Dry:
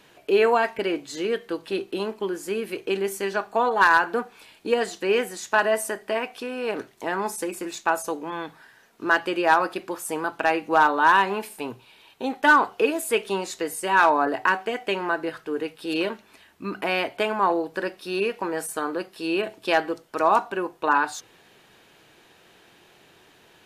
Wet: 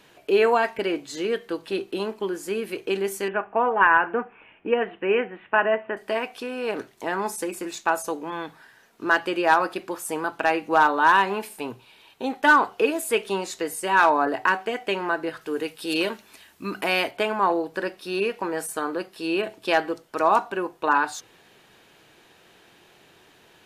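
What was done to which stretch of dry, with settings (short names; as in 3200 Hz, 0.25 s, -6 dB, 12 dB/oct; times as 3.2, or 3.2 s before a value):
3.28–5.97 steep low-pass 2900 Hz 72 dB/oct
15.41–17.11 high shelf 3900 Hz +9.5 dB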